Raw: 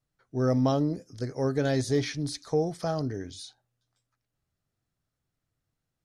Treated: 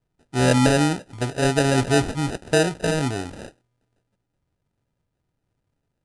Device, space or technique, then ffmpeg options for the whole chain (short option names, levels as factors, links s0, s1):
crushed at another speed: -af "asetrate=88200,aresample=44100,acrusher=samples=20:mix=1:aa=0.000001,asetrate=22050,aresample=44100,volume=2.24"